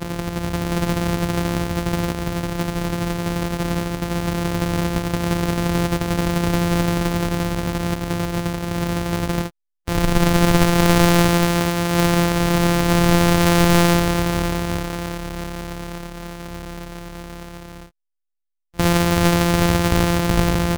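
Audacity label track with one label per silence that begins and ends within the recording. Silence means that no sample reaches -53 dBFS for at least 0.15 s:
9.500000	9.870000	silence
17.910000	18.740000	silence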